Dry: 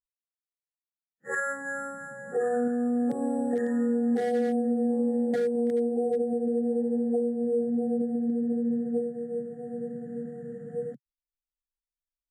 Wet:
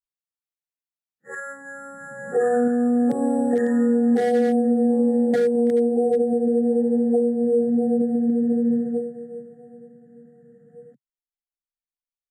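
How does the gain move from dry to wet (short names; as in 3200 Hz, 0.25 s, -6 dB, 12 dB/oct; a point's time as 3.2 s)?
1.8 s -4 dB
2.25 s +7 dB
8.76 s +7 dB
9.13 s 0 dB
9.98 s -11.5 dB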